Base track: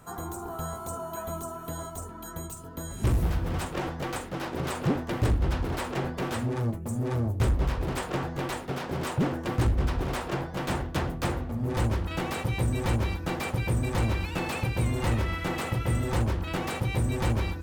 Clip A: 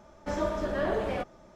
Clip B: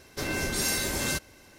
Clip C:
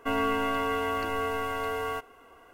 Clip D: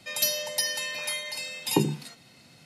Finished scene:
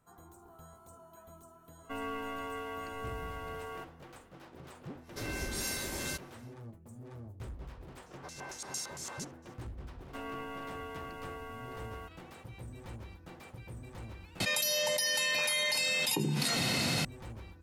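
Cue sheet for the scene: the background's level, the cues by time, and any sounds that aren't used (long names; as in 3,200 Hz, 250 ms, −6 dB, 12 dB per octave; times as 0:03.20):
base track −19.5 dB
0:01.84: mix in C −11.5 dB
0:04.99: mix in B −8.5 dB, fades 0.10 s
0:08.06: mix in B −4 dB + auto-filter band-pass square 4.4 Hz 920–6,600 Hz
0:10.08: mix in C −14.5 dB
0:14.40: overwrite with D −12.5 dB + envelope flattener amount 100%
not used: A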